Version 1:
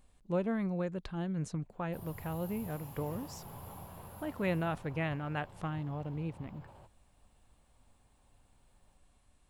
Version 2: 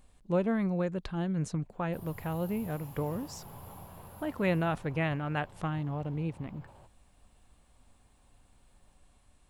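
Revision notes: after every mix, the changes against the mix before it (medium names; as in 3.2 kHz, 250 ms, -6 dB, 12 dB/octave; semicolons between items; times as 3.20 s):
speech +4.0 dB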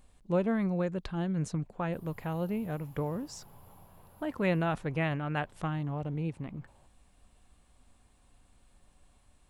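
background -8.5 dB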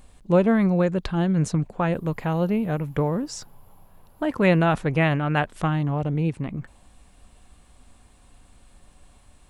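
speech +10.0 dB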